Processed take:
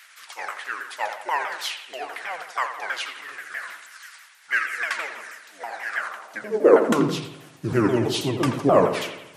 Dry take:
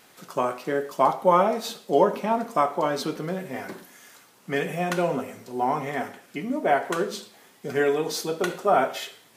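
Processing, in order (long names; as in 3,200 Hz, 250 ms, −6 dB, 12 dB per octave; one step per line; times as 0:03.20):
pitch shifter swept by a sawtooth −8 semitones, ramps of 161 ms
bucket-brigade delay 84 ms, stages 2,048, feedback 53%, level −9.5 dB
high-pass filter sweep 1,700 Hz → 110 Hz, 0:05.94–0:07.26
level +4 dB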